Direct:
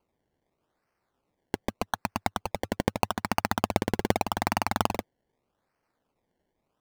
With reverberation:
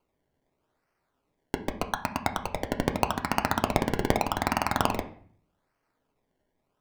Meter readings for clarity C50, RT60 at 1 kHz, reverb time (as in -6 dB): 12.5 dB, 0.50 s, 0.50 s